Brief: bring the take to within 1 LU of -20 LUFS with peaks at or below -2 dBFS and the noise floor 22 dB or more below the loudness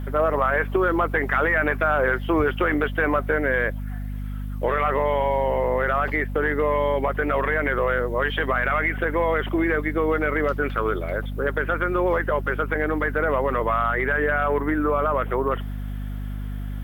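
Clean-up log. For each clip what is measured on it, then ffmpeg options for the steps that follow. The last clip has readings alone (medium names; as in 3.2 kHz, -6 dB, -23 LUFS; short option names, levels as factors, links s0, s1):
hum 50 Hz; highest harmonic 250 Hz; hum level -27 dBFS; loudness -23.0 LUFS; peak level -9.0 dBFS; loudness target -20.0 LUFS
-> -af "bandreject=f=50:t=h:w=4,bandreject=f=100:t=h:w=4,bandreject=f=150:t=h:w=4,bandreject=f=200:t=h:w=4,bandreject=f=250:t=h:w=4"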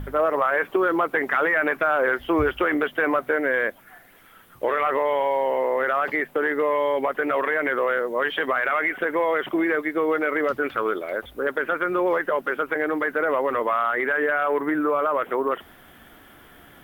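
hum not found; loudness -23.0 LUFS; peak level -9.5 dBFS; loudness target -20.0 LUFS
-> -af "volume=1.41"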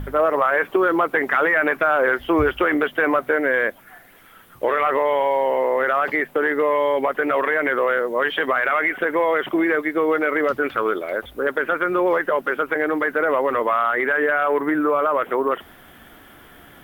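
loudness -20.0 LUFS; peak level -6.5 dBFS; noise floor -47 dBFS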